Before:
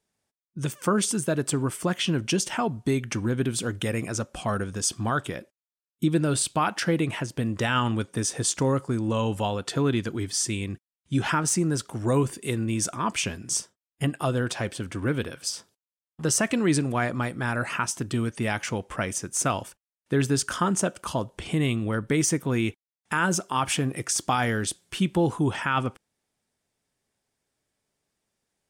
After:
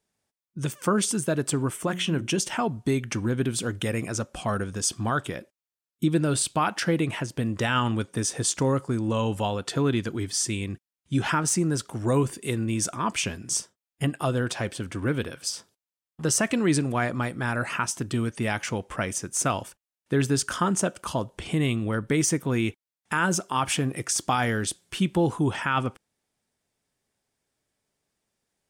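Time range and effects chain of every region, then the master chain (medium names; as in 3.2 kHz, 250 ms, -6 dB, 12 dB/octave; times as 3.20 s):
1.71–2.39 s: peaking EQ 4.7 kHz -8.5 dB 0.35 oct + hum notches 60/120/180/240/300/360 Hz
whole clip: none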